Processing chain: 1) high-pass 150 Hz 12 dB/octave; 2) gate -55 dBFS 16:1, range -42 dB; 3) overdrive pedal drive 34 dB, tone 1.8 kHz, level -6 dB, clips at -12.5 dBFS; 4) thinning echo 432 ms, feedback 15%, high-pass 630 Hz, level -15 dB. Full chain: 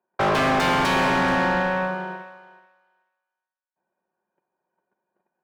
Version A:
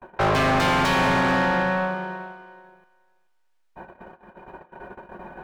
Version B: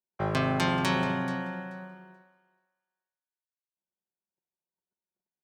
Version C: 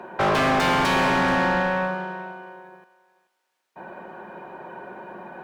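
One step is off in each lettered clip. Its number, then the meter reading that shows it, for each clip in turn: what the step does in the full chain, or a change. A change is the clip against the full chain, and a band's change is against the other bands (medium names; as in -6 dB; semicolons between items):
1, 125 Hz band +3.0 dB; 3, crest factor change +9.0 dB; 2, momentary loudness spread change +9 LU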